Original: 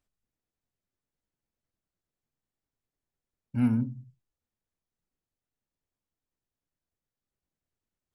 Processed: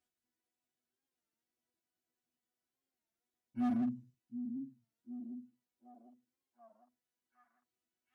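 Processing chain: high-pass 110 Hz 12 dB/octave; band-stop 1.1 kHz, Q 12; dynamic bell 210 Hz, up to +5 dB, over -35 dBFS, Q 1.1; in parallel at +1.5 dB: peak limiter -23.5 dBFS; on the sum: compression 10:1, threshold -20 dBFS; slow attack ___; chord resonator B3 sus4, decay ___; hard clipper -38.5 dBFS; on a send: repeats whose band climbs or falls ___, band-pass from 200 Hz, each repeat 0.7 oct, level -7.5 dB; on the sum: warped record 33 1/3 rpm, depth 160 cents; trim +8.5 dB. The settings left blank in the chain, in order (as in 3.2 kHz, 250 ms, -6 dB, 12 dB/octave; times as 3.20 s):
114 ms, 0.22 s, 749 ms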